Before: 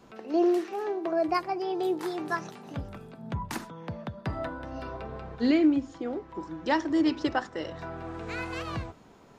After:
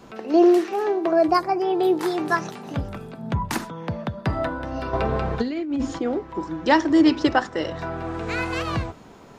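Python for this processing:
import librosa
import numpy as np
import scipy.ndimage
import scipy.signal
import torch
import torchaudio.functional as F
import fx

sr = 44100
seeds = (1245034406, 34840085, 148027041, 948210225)

y = fx.peak_eq(x, sr, hz=fx.line((1.27, 2000.0), (1.94, 8200.0)), db=-12.0, octaves=0.54, at=(1.27, 1.94), fade=0.02)
y = fx.over_compress(y, sr, threshold_db=-32.0, ratio=-1.0, at=(4.93, 5.99))
y = y * librosa.db_to_amplitude(8.5)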